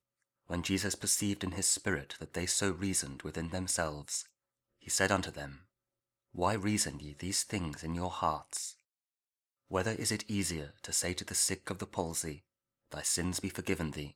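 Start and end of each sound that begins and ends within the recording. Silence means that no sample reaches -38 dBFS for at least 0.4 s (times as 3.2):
0.5–4.22
4.88–5.47
6.36–8.7
9.71–12.34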